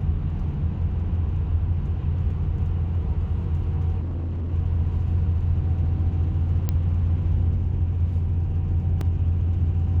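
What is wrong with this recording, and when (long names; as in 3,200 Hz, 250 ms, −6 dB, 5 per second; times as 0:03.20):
0:04.00–0:04.54: clipping −25 dBFS
0:06.69: click −12 dBFS
0:09.01: drop-out 2.5 ms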